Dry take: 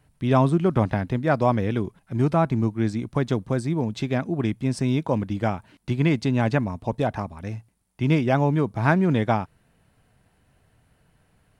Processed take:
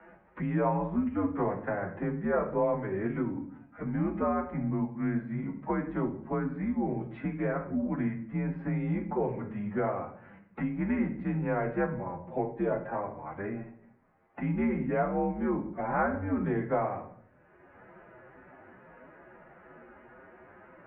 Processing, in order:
tape wow and flutter 16 cents
phase-vocoder stretch with locked phases 1.8×
rectangular room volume 59 cubic metres, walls mixed, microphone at 0.46 metres
single-sideband voice off tune −93 Hz 280–2,100 Hz
multiband upward and downward compressor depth 70%
level −6 dB

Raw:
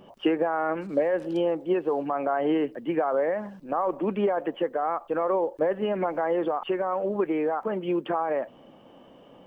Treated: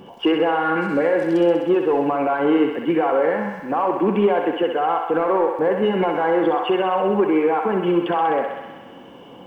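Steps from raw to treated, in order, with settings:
0:00.64–0:01.08: parametric band 1,800 Hz +4.5 dB 0.93 octaves
in parallel at +2 dB: brickwall limiter −21.5 dBFS, peak gain reduction 9 dB
on the sum: notch comb filter 620 Hz
soft clipping −12 dBFS, distortion −23 dB
feedback echo with a high-pass in the loop 64 ms, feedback 77%, high-pass 420 Hz, level −5 dB
level +3 dB

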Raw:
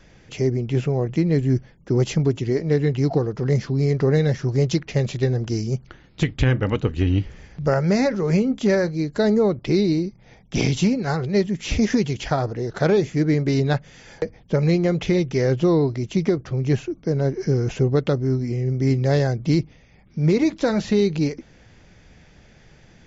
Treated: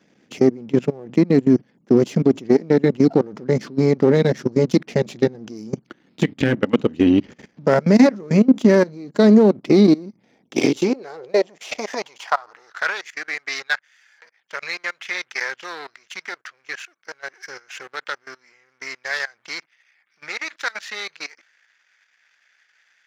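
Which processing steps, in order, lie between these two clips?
gain on one half-wave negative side −7 dB
output level in coarse steps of 22 dB
high-pass filter sweep 230 Hz → 1,600 Hz, 0:10.20–0:12.98
level +7.5 dB

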